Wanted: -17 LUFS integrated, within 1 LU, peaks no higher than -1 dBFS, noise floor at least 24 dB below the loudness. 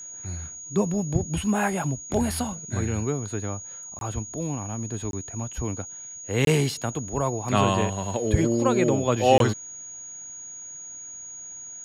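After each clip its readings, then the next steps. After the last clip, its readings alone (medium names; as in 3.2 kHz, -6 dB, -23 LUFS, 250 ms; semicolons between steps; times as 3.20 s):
dropouts 4; longest dropout 22 ms; steady tone 6.7 kHz; tone level -37 dBFS; loudness -26.0 LUFS; peak level -4.5 dBFS; loudness target -17.0 LUFS
-> interpolate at 3.99/5.11/6.45/9.38 s, 22 ms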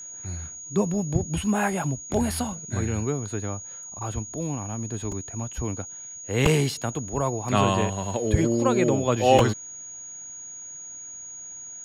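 dropouts 0; steady tone 6.7 kHz; tone level -37 dBFS
-> band-stop 6.7 kHz, Q 30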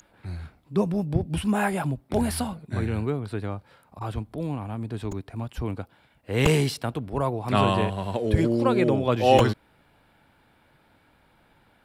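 steady tone not found; loudness -25.5 LUFS; peak level -4.5 dBFS; loudness target -17.0 LUFS
-> trim +8.5 dB; peak limiter -1 dBFS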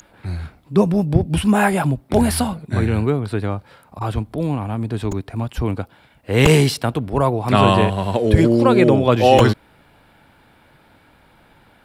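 loudness -17.5 LUFS; peak level -1.0 dBFS; noise floor -53 dBFS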